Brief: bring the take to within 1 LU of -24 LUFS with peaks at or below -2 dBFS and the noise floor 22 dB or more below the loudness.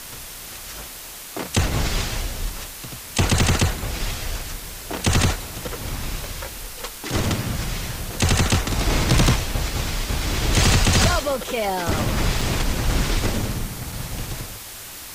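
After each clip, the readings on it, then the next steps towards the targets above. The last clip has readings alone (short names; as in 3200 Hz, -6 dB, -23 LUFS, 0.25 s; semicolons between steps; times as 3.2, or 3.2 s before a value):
dropouts 5; longest dropout 2.3 ms; noise floor -37 dBFS; noise floor target -45 dBFS; loudness -23.0 LUFS; peak -10.0 dBFS; loudness target -24.0 LUFS
-> interpolate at 3.43/3.99/5.68/12.41/13.92, 2.3 ms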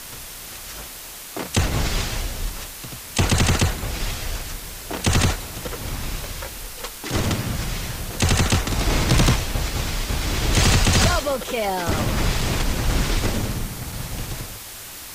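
dropouts 0; noise floor -37 dBFS; noise floor target -45 dBFS
-> denoiser 8 dB, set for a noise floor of -37 dBFS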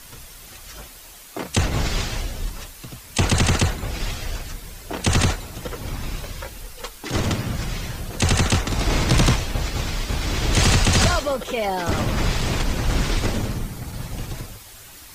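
noise floor -43 dBFS; noise floor target -45 dBFS
-> denoiser 6 dB, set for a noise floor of -43 dBFS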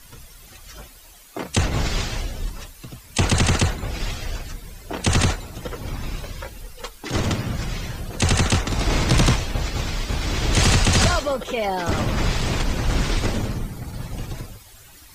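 noise floor -46 dBFS; loudness -23.0 LUFS; peak -10.0 dBFS; loudness target -24.0 LUFS
-> gain -1 dB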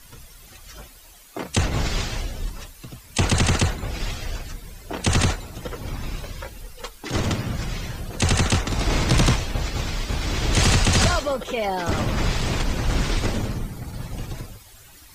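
loudness -24.0 LUFS; peak -11.0 dBFS; noise floor -47 dBFS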